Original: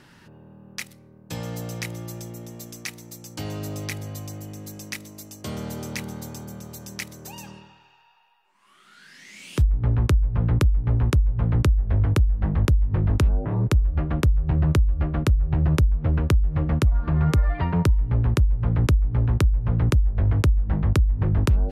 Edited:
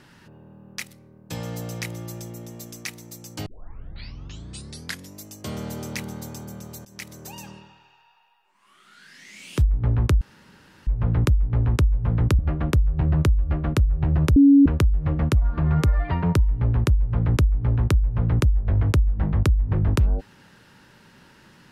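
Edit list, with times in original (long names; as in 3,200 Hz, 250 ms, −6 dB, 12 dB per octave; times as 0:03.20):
0:03.46: tape start 1.75 s
0:06.85–0:07.15: fade in, from −17.5 dB
0:10.21: splice in room tone 0.66 s
0:11.73–0:13.89: remove
0:15.86–0:16.16: beep over 280 Hz −9 dBFS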